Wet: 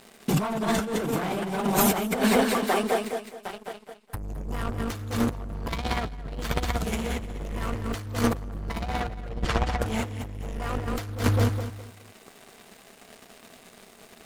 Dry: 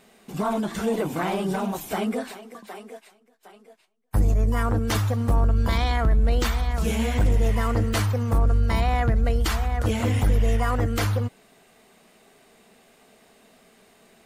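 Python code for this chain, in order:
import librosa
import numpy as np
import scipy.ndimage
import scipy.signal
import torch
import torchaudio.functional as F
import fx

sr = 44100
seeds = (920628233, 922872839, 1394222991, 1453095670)

y = fx.leveller(x, sr, passes=3)
y = fx.air_absorb(y, sr, metres=78.0, at=(9.29, 9.79))
y = fx.echo_feedback(y, sr, ms=209, feedback_pct=27, wet_db=-5.0)
y = fx.over_compress(y, sr, threshold_db=-22.0, ratio=-0.5)
y = y * 10.0 ** (-3.5 / 20.0)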